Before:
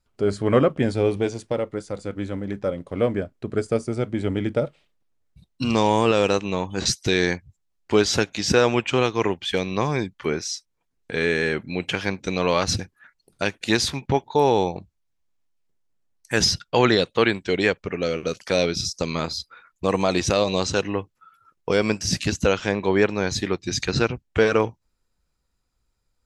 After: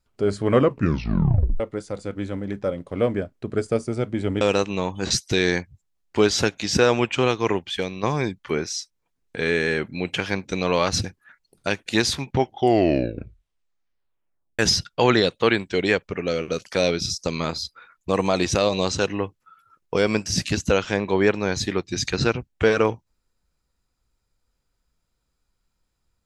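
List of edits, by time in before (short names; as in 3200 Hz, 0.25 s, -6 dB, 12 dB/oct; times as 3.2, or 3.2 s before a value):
0.6 tape stop 1.00 s
4.41–6.16 cut
9.34–9.78 fade out, to -7 dB
14.05 tape stop 2.29 s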